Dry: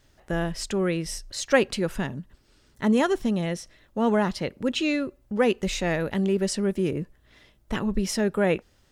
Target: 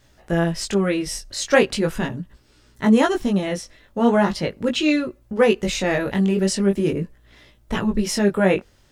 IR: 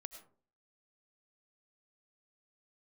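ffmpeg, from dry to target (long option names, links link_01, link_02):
-af "flanger=delay=16.5:depth=5.2:speed=0.4,volume=8dB"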